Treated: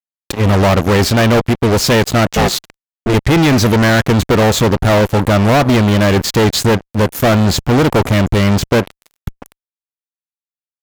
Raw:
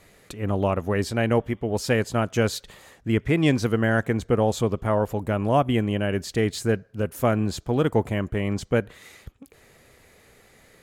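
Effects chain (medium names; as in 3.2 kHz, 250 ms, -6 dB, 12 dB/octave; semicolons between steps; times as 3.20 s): 2.25–3.13 s: ring modulator 390 Hz -> 110 Hz; fuzz box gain 32 dB, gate -38 dBFS; dynamic bell 9.2 kHz, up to -6 dB, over -41 dBFS, Q 1.9; trim +5 dB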